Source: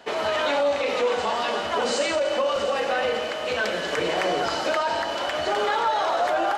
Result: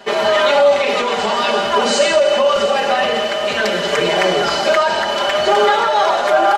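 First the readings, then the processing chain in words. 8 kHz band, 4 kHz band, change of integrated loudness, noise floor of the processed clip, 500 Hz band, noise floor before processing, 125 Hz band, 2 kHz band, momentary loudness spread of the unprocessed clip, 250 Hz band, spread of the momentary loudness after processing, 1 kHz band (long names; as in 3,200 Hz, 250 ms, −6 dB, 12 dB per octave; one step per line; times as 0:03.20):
+9.5 dB, +10.5 dB, +9.5 dB, −20 dBFS, +9.5 dB, −29 dBFS, +9.5 dB, +8.5 dB, 3 LU, +8.0 dB, 4 LU, +9.0 dB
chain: comb filter 5 ms, depth 92%
level +6.5 dB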